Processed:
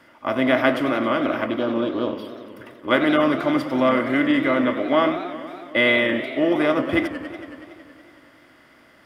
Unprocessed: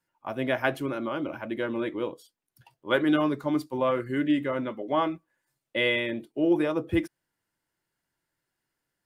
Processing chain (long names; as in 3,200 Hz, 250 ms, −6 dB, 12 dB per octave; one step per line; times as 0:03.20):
compressor on every frequency bin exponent 0.6
thirty-one-band graphic EQ 250 Hz +12 dB, 630 Hz +9 dB, 1,250 Hz +9 dB, 2,000 Hz +9 dB, 3,150 Hz +5 dB, 5,000 Hz +8 dB
0:01.46–0:02.88: phaser swept by the level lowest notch 590 Hz, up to 2,000 Hz, full sweep at −18.5 dBFS
feedback echo with a swinging delay time 93 ms, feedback 79%, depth 190 cents, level −13 dB
level −2 dB